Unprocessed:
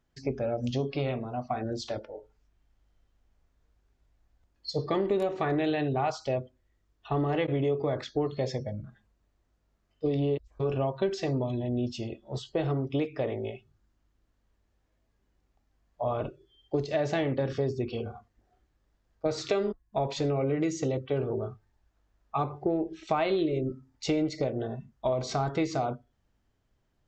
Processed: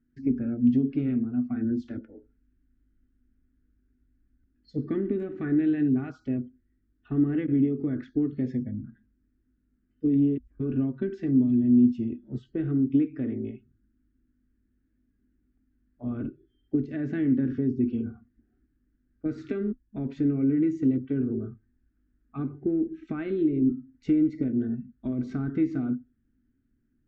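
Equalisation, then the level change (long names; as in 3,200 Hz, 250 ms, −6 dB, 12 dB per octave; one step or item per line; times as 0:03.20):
drawn EQ curve 180 Hz 0 dB, 250 Hz +15 dB, 570 Hz −18 dB, 1,000 Hz −22 dB, 1,500 Hz −2 dB, 4,400 Hz −24 dB
0.0 dB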